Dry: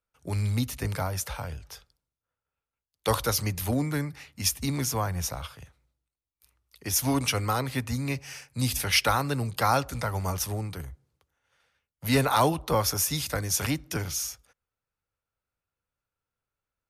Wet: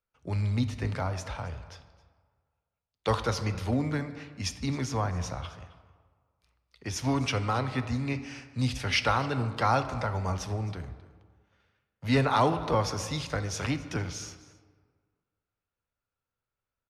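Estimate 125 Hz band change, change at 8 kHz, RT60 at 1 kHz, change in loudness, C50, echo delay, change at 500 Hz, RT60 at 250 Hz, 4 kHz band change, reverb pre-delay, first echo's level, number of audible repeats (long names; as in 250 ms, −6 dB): −0.5 dB, −10.5 dB, 1.6 s, −2.5 dB, 11.5 dB, 266 ms, −1.0 dB, 1.5 s, −5.0 dB, 3 ms, −20.5 dB, 1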